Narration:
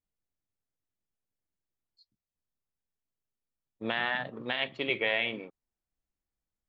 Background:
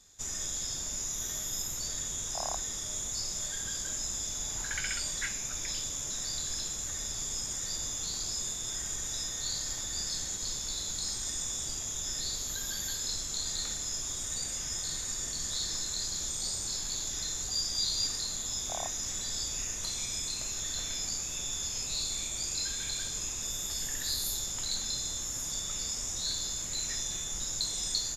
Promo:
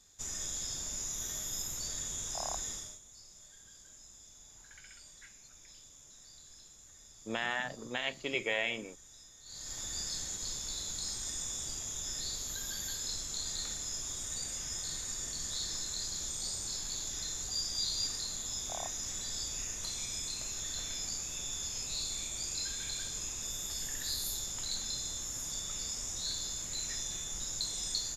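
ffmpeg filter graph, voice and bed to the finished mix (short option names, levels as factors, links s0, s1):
-filter_complex "[0:a]adelay=3450,volume=0.631[s0];[1:a]volume=4.73,afade=t=out:st=2.7:d=0.29:silence=0.141254,afade=t=in:st=9.45:d=0.4:silence=0.149624[s1];[s0][s1]amix=inputs=2:normalize=0"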